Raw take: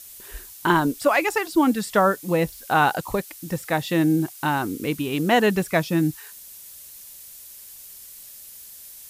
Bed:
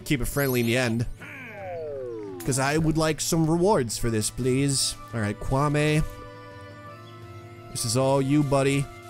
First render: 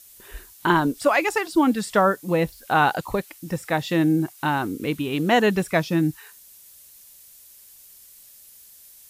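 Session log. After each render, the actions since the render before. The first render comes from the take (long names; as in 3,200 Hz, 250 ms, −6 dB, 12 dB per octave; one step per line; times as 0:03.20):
noise reduction from a noise print 6 dB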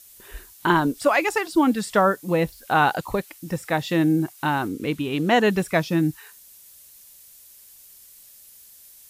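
0:04.68–0:05.46: high-shelf EQ 12,000 Hz −8 dB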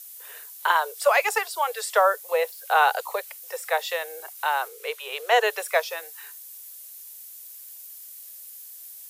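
Butterworth high-pass 440 Hz 96 dB per octave
high-shelf EQ 11,000 Hz +10.5 dB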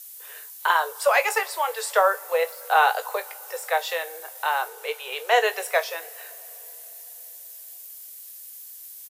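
double-tracking delay 18 ms −11 dB
coupled-rooms reverb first 0.25 s, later 4.4 s, from −22 dB, DRR 11.5 dB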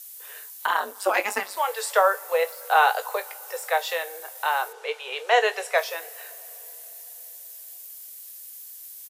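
0:00.66–0:01.57: amplitude modulation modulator 200 Hz, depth 70%
0:04.72–0:05.76: low-pass filter 5,400 Hz → 9,000 Hz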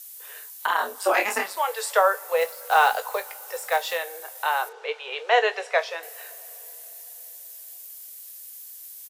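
0:00.76–0:01.53: double-tracking delay 28 ms −3 dB
0:02.37–0:03.98: one scale factor per block 5 bits
0:04.69–0:06.03: low-pass filter 5,100 Hz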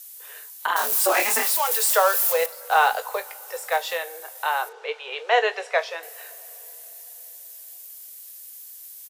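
0:00.76–0:02.46: spike at every zero crossing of −17.5 dBFS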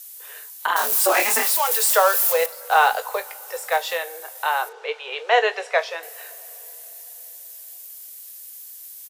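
level +2 dB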